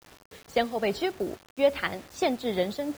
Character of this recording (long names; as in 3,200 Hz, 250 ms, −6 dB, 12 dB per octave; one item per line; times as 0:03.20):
tremolo triangle 2.4 Hz, depth 55%
a quantiser's noise floor 8 bits, dither none